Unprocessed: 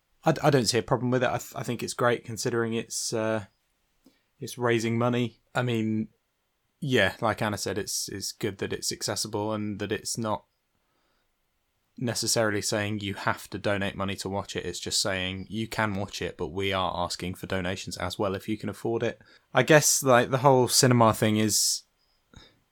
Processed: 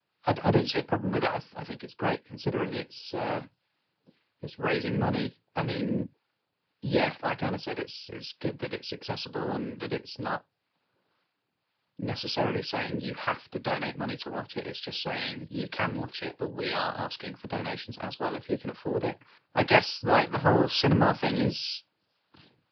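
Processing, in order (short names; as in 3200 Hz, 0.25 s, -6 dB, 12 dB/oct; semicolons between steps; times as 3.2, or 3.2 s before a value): harmonic tremolo 2 Hz, depth 50%, crossover 580 Hz; noise vocoder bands 8; downsampling 11025 Hz; 1.69–2.34 upward expander 1.5:1, over -42 dBFS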